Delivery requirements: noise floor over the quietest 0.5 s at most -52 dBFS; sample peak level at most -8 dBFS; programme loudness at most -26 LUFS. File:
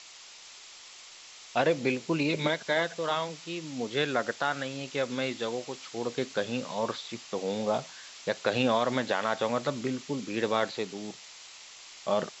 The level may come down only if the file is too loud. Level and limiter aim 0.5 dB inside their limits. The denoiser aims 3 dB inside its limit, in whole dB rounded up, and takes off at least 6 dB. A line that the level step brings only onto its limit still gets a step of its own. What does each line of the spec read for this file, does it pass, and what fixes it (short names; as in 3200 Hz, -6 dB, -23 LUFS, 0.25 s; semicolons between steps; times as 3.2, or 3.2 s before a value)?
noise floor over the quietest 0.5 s -50 dBFS: fail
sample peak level -12.5 dBFS: OK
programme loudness -30.5 LUFS: OK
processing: denoiser 6 dB, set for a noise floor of -50 dBFS